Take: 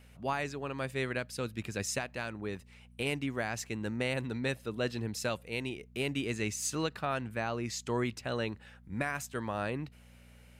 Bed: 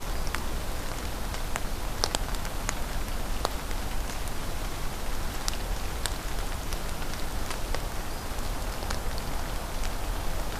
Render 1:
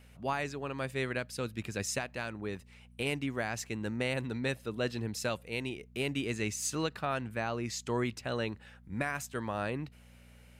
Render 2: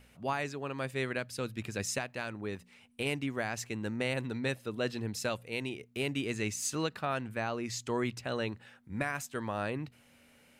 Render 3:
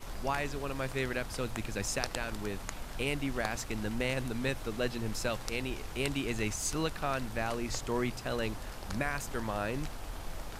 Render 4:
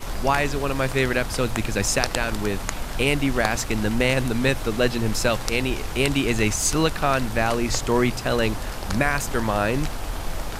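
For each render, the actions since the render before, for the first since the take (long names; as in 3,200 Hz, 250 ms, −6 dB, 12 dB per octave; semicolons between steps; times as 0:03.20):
no processing that can be heard
hum removal 60 Hz, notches 3
mix in bed −10 dB
level +12 dB; brickwall limiter −3 dBFS, peak gain reduction 2 dB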